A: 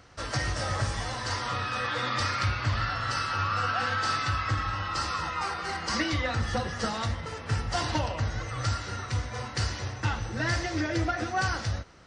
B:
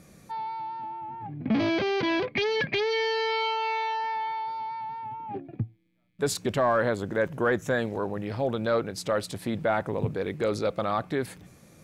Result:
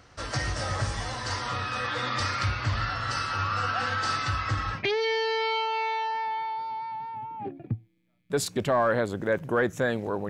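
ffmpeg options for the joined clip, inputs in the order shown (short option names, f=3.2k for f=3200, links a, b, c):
-filter_complex "[0:a]apad=whole_dur=10.29,atrim=end=10.29,atrim=end=4.84,asetpts=PTS-STARTPTS[a];[1:a]atrim=start=2.59:end=8.18,asetpts=PTS-STARTPTS[b];[a][b]acrossfade=d=0.14:c1=tri:c2=tri"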